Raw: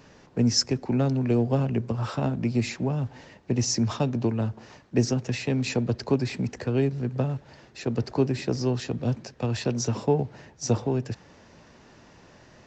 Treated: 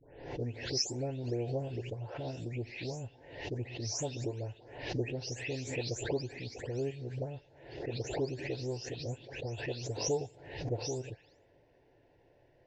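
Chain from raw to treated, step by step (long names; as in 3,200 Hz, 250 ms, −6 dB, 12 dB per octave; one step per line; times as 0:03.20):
every frequency bin delayed by itself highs late, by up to 329 ms
low-pass that shuts in the quiet parts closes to 1,800 Hz, open at −18.5 dBFS
phaser with its sweep stopped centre 500 Hz, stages 4
background raised ahead of every attack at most 74 dB per second
level −8 dB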